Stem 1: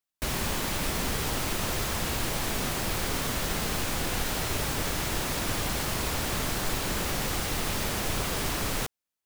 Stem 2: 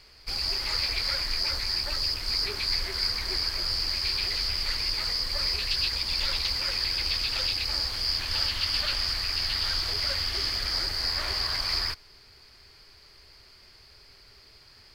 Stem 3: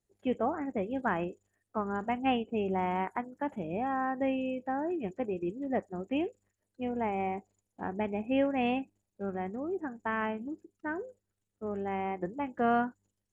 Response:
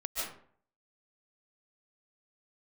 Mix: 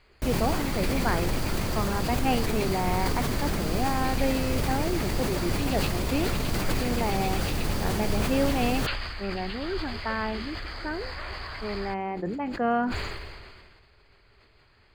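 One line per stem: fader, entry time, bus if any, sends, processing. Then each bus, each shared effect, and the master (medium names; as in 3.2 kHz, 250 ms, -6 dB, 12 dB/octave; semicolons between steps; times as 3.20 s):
-1.5 dB, 0.00 s, no send, tilt shelf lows +5.5 dB, about 700 Hz
-2.0 dB, 0.00 s, no send, boxcar filter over 8 samples
+2.0 dB, 0.00 s, no send, none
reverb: none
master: decay stretcher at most 32 dB/s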